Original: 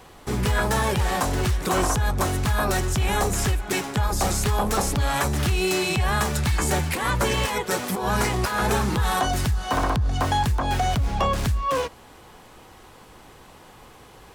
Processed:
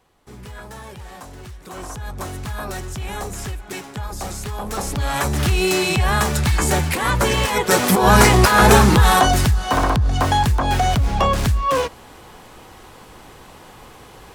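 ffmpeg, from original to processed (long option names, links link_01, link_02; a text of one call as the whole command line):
ffmpeg -i in.wav -af "volume=11.5dB,afade=type=in:start_time=1.65:duration=0.61:silence=0.375837,afade=type=in:start_time=4.59:duration=0.93:silence=0.298538,afade=type=in:start_time=7.48:duration=0.42:silence=0.446684,afade=type=out:start_time=8.77:duration=0.88:silence=0.473151" out.wav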